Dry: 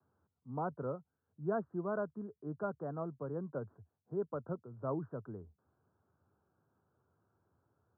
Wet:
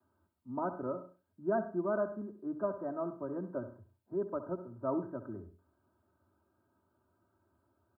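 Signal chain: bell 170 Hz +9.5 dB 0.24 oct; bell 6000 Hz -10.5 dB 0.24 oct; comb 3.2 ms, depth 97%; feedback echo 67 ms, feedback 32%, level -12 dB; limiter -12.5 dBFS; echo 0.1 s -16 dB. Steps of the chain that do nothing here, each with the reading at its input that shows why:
bell 6000 Hz: input band ends at 1500 Hz; limiter -12.5 dBFS: input peak -21.5 dBFS

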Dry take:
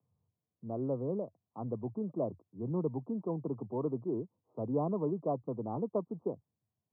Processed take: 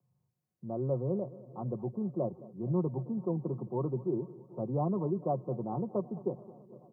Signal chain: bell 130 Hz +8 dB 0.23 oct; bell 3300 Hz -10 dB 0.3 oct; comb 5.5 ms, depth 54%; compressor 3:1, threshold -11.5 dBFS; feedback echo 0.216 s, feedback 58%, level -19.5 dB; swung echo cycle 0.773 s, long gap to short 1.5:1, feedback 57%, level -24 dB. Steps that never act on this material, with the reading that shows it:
bell 3300 Hz: input band ends at 1100 Hz; compressor, threshold -11.5 dBFS: input peak -20.0 dBFS

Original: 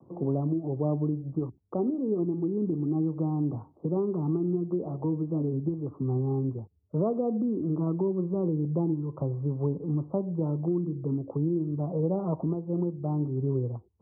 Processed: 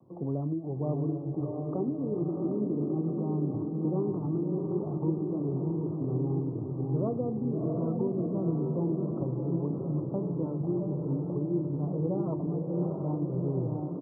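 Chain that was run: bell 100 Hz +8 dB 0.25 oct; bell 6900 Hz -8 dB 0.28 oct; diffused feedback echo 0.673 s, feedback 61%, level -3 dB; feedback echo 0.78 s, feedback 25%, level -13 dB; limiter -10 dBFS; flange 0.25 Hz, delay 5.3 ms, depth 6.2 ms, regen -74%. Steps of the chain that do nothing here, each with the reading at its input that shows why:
bell 6900 Hz: input band ends at 850 Hz; limiter -10 dBFS: input peak -12.5 dBFS

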